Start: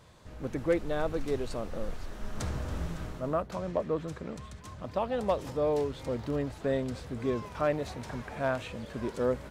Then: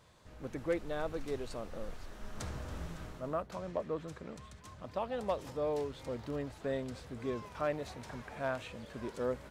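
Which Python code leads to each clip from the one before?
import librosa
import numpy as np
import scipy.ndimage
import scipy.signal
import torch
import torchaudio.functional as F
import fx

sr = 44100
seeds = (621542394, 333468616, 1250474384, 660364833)

y = fx.low_shelf(x, sr, hz=480.0, db=-3.5)
y = F.gain(torch.from_numpy(y), -4.5).numpy()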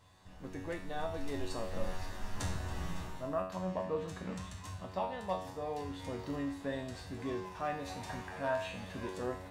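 y = x + 0.32 * np.pad(x, (int(1.1 * sr / 1000.0), 0))[:len(x)]
y = fx.rider(y, sr, range_db=5, speed_s=0.5)
y = fx.comb_fb(y, sr, f0_hz=93.0, decay_s=0.56, harmonics='all', damping=0.0, mix_pct=90)
y = F.gain(torch.from_numpy(y), 12.5).numpy()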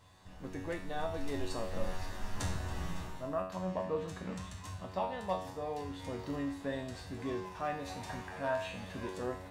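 y = fx.rider(x, sr, range_db=10, speed_s=2.0)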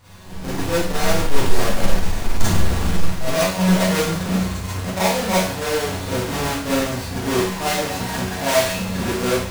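y = fx.halfwave_hold(x, sr)
y = fx.peak_eq(y, sr, hz=6700.0, db=2.5, octaves=1.7)
y = fx.rev_schroeder(y, sr, rt60_s=0.45, comb_ms=33, drr_db=-9.0)
y = F.gain(torch.from_numpy(y), 4.0).numpy()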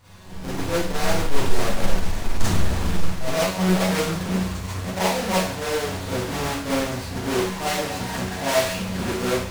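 y = fx.doppler_dist(x, sr, depth_ms=0.55)
y = F.gain(torch.from_numpy(y), -3.0).numpy()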